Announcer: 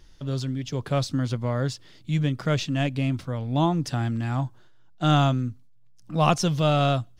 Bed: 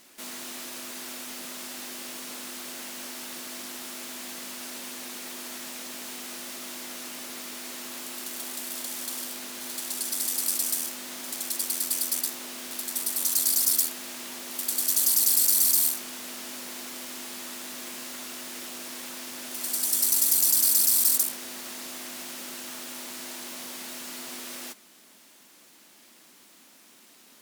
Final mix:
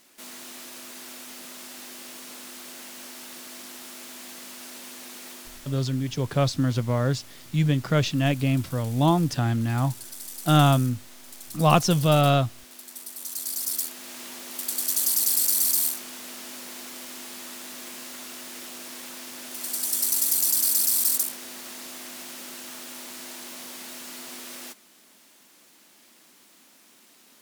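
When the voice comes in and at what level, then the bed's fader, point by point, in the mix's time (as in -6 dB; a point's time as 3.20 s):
5.45 s, +2.0 dB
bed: 5.31 s -3 dB
5.80 s -10.5 dB
13.16 s -10.5 dB
14.20 s -1 dB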